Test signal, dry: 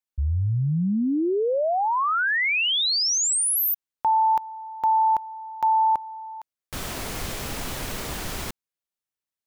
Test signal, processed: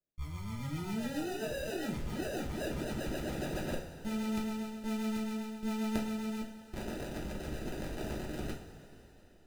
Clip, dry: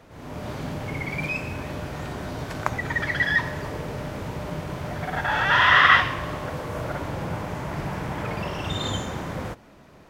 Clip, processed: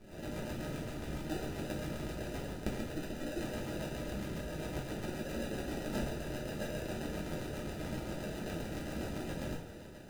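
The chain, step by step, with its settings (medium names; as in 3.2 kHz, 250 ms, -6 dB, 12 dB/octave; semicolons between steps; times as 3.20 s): reverse; compression 16:1, threshold -33 dBFS; reverse; sample-rate reducer 1.1 kHz, jitter 0%; half-wave rectifier; rotary cabinet horn 7.5 Hz; two-slope reverb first 0.4 s, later 3.8 s, from -17 dB, DRR -3.5 dB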